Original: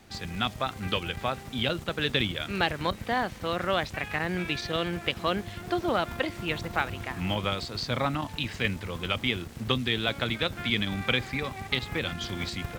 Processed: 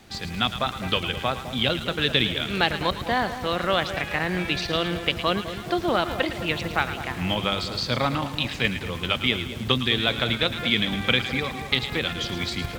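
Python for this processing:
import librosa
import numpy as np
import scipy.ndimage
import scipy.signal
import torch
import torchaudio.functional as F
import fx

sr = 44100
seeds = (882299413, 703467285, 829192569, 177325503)

y = fx.peak_eq(x, sr, hz=3600.0, db=3.0, octaves=0.77)
y = fx.hum_notches(y, sr, base_hz=50, count=2)
y = fx.echo_split(y, sr, split_hz=880.0, low_ms=206, high_ms=110, feedback_pct=52, wet_db=-10.5)
y = F.gain(torch.from_numpy(y), 3.5).numpy()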